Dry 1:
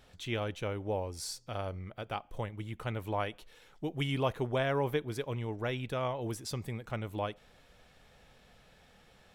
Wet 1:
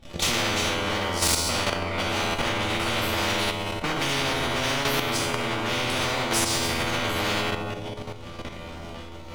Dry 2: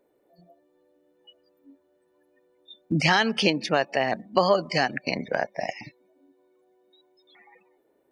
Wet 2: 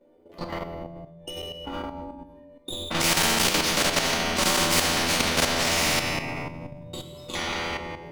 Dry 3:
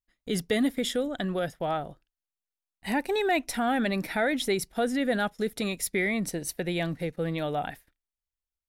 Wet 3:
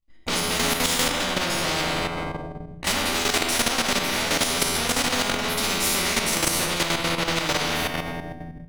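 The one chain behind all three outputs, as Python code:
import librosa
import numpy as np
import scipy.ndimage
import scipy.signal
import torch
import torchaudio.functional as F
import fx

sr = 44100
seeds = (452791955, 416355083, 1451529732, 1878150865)

p1 = fx.peak_eq(x, sr, hz=1300.0, db=-5.0, octaves=0.51)
p2 = fx.fuzz(p1, sr, gain_db=46.0, gate_db=-54.0)
p3 = p1 + (p2 * librosa.db_to_amplitude(-4.0))
p4 = fx.notch(p3, sr, hz=1700.0, q=6.4)
p5 = fx.comb_fb(p4, sr, f0_hz=84.0, decay_s=0.86, harmonics='all', damping=0.0, mix_pct=90)
p6 = p5 + fx.echo_single(p5, sr, ms=171, db=-22.0, dry=0)
p7 = fx.room_shoebox(p6, sr, seeds[0], volume_m3=320.0, walls='mixed', distance_m=2.4)
p8 = fx.level_steps(p7, sr, step_db=10)
p9 = fx.lowpass(p8, sr, hz=2700.0, slope=6)
p10 = fx.low_shelf(p9, sr, hz=220.0, db=6.0)
p11 = fx.rider(p10, sr, range_db=5, speed_s=2.0)
y = fx.spectral_comp(p11, sr, ratio=4.0)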